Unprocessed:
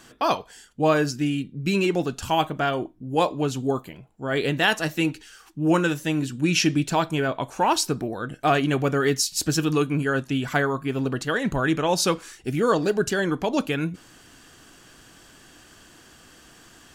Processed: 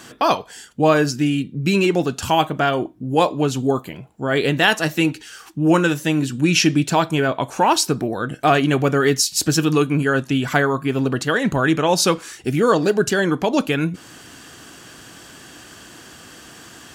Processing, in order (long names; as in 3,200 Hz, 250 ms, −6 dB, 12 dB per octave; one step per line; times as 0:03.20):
high-pass filter 75 Hz
in parallel at −1 dB: downward compressor, threshold −33 dBFS, peak gain reduction 17 dB
on the sum: level +3.5 dB